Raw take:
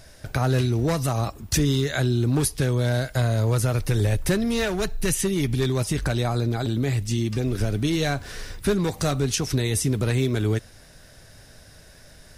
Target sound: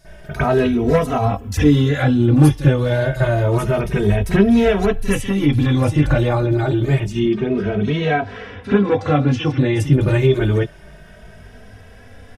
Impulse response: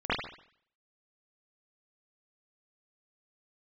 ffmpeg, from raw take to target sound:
-filter_complex "[0:a]asettb=1/sr,asplit=3[link_01][link_02][link_03];[link_01]atrim=end=7.194[link_04];[link_02]atrim=start=7.19:end=9.8,asetpts=PTS-STARTPTS,afade=type=in:duration=0.004:curve=qsin,afade=type=out:start_time=2.606:duration=0.004:curve=qsin,highpass=110,lowpass=3800[link_05];[link_03]atrim=start=9.796[link_06];[link_04][link_05]acrossfade=duration=0.004:curve1=hsin:curve2=qsin[link_07];[link_07][link_06]acrossfade=duration=0.004:curve1=qsin:curve2=hsin[link_08];[1:a]atrim=start_sample=2205,atrim=end_sample=3087[link_09];[link_08][link_09]afir=irnorm=-1:irlink=0,asplit=2[link_10][link_11];[link_11]adelay=2.8,afreqshift=0.28[link_12];[link_10][link_12]amix=inputs=2:normalize=1,volume=2dB"

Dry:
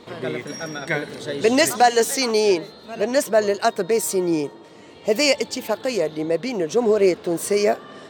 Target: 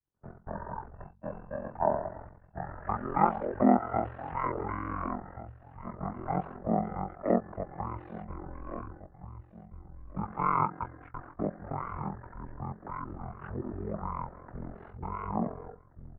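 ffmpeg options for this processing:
ffmpeg -i in.wav -filter_complex "[0:a]highpass=frequency=280:width_type=q:width=0.5412,highpass=frequency=280:width_type=q:width=1.307,lowpass=frequency=3200:width_type=q:width=0.5176,lowpass=frequency=3200:width_type=q:width=0.7071,lowpass=frequency=3200:width_type=q:width=1.932,afreqshift=-270,adynamicequalizer=threshold=0.0224:dfrequency=1100:dqfactor=1.3:tfrequency=1100:tqfactor=1.3:attack=5:release=100:ratio=0.375:range=3:mode=boostabove:tftype=bell,agate=range=-40dB:threshold=-32dB:ratio=16:detection=peak,asplit=2[link_01][link_02];[link_02]aecho=0:1:713|1426:0.141|0.0353[link_03];[link_01][link_03]amix=inputs=2:normalize=0,asetrate=22050,aresample=44100,bandreject=frequency=48.02:width_type=h:width=4,bandreject=frequency=96.04:width_type=h:width=4,bandreject=frequency=144.06:width_type=h:width=4,bandreject=frequency=192.08:width_type=h:width=4,aeval=exprs='val(0)*sin(2*PI*22*n/s)':channel_layout=same,acrossover=split=240|1600[link_04][link_05][link_06];[link_04]acompressor=threshold=-40dB:ratio=6[link_07];[link_07][link_05][link_06]amix=inputs=3:normalize=0,volume=-2dB" out.wav

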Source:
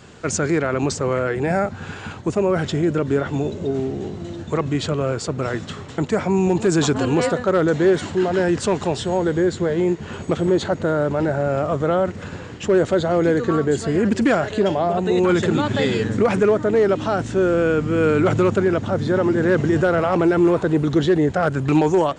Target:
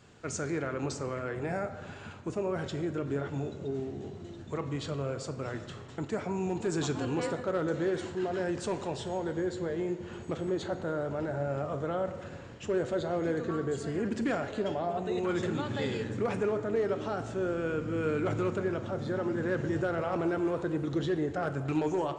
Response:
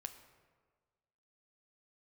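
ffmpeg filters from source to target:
-filter_complex "[1:a]atrim=start_sample=2205[link_01];[0:a][link_01]afir=irnorm=-1:irlink=0,volume=-9dB"

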